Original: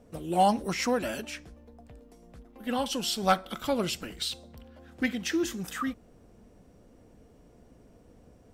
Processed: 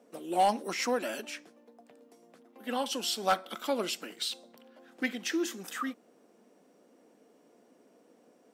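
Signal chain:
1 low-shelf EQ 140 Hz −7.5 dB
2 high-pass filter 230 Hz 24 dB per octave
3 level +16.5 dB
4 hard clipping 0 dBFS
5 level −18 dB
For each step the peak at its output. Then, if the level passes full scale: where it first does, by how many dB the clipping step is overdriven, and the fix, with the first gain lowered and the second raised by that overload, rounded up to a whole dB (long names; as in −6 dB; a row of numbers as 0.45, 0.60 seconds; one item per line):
−12.0, −9.0, +7.5, 0.0, −18.0 dBFS
step 3, 7.5 dB
step 3 +8.5 dB, step 5 −10 dB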